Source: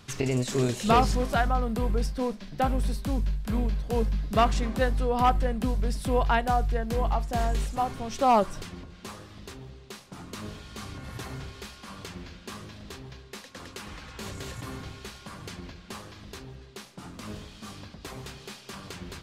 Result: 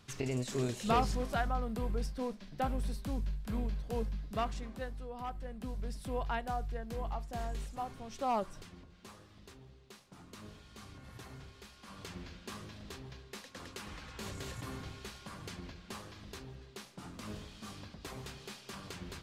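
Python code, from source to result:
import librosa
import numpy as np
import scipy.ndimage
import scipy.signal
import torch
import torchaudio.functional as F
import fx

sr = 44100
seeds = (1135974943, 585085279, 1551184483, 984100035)

y = fx.gain(x, sr, db=fx.line((3.86, -8.5), (5.27, -19.5), (5.8, -12.0), (11.68, -12.0), (12.13, -5.0)))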